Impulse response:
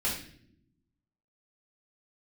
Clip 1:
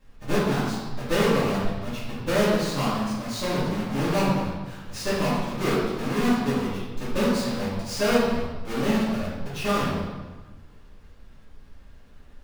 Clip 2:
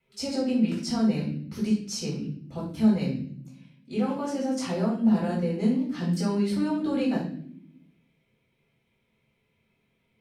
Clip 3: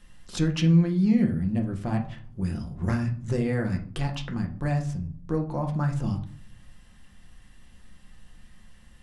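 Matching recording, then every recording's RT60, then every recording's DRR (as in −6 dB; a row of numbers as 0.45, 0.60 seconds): 2; 1.3 s, non-exponential decay, 0.50 s; −10.5, −6.5, 2.0 decibels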